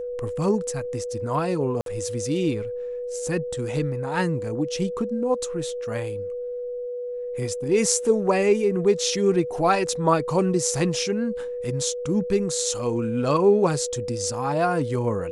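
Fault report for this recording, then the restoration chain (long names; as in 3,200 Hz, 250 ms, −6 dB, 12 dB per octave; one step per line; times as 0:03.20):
whistle 490 Hz −28 dBFS
0:01.81–0:01.86: drop-out 52 ms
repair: notch filter 490 Hz, Q 30
repair the gap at 0:01.81, 52 ms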